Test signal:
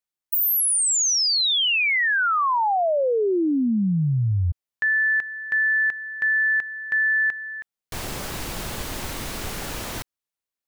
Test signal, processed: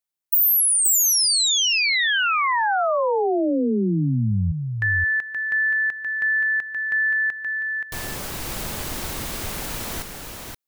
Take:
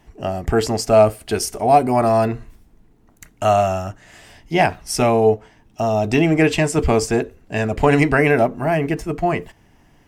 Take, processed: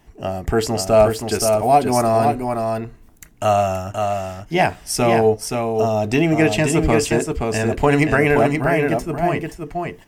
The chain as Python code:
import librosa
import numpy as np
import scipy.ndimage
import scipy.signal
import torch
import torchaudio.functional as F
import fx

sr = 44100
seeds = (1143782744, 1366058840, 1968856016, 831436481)

y = fx.high_shelf(x, sr, hz=9400.0, db=6.0)
y = y + 10.0 ** (-5.0 / 20.0) * np.pad(y, (int(525 * sr / 1000.0), 0))[:len(y)]
y = y * 10.0 ** (-1.0 / 20.0)